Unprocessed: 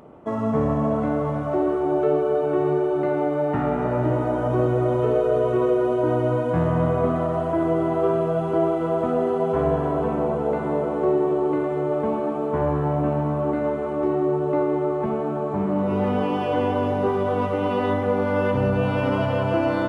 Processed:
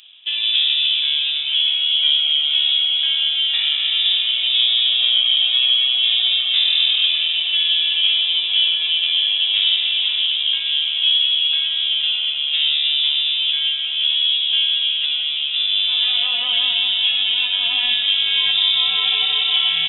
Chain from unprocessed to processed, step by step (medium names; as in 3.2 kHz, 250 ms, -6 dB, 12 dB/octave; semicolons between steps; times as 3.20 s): in parallel at -5 dB: crossover distortion -38.5 dBFS; on the sum: frequency inversion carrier 3.7 kHz